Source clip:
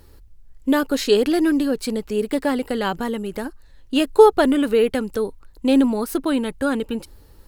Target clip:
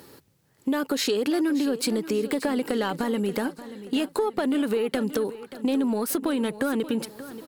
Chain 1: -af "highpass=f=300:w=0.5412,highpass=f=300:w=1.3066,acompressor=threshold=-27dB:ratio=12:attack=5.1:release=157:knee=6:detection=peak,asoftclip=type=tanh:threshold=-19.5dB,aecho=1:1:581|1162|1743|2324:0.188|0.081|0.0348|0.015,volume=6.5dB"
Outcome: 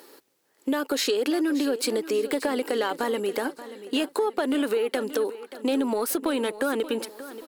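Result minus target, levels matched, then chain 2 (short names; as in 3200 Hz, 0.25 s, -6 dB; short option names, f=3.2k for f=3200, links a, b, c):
125 Hz band -10.0 dB
-af "highpass=f=140:w=0.5412,highpass=f=140:w=1.3066,acompressor=threshold=-27dB:ratio=12:attack=5.1:release=157:knee=6:detection=peak,asoftclip=type=tanh:threshold=-19.5dB,aecho=1:1:581|1162|1743|2324:0.188|0.081|0.0348|0.015,volume=6.5dB"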